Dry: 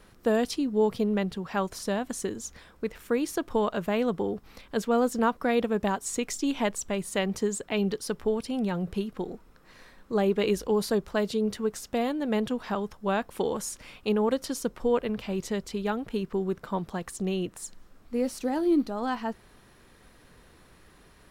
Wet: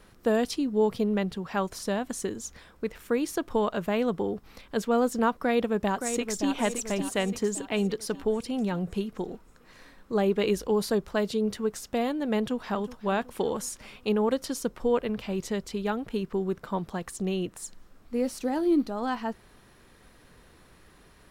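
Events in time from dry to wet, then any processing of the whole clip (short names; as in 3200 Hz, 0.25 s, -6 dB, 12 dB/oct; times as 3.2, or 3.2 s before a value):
5.37–6.51 echo throw 0.57 s, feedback 50%, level -7.5 dB
12.36–12.96 echo throw 0.37 s, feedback 50%, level -16 dB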